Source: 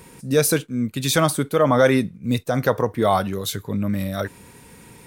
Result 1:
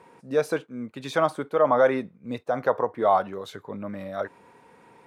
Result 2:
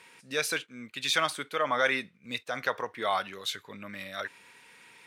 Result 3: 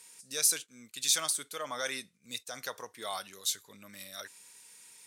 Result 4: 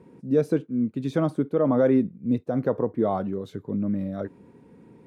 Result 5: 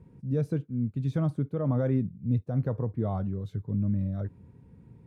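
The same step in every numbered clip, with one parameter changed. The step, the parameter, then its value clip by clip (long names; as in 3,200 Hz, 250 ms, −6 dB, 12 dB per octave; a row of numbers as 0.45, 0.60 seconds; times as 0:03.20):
resonant band-pass, frequency: 800, 2,400, 6,800, 290, 100 Hertz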